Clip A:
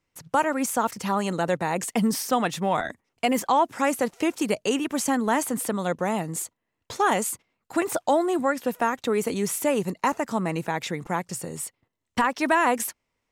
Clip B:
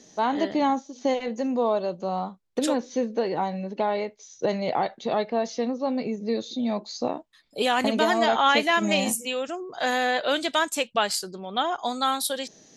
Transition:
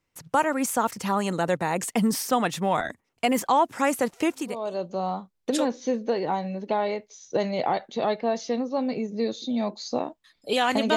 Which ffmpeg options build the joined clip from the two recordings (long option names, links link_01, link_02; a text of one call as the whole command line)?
ffmpeg -i cue0.wav -i cue1.wav -filter_complex "[0:a]apad=whole_dur=10.96,atrim=end=10.96,atrim=end=4.82,asetpts=PTS-STARTPTS[link_01];[1:a]atrim=start=1.37:end=8.05,asetpts=PTS-STARTPTS[link_02];[link_01][link_02]acrossfade=duration=0.54:curve1=qua:curve2=qua" out.wav